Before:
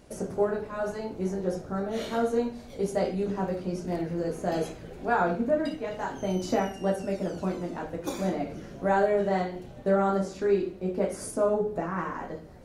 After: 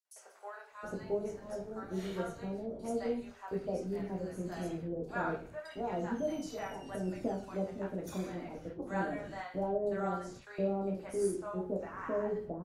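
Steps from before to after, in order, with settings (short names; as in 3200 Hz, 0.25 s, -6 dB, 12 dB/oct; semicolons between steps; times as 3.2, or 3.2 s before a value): gate with hold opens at -30 dBFS; three bands offset in time highs, mids, lows 50/720 ms, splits 780/4100 Hz; gain -7.5 dB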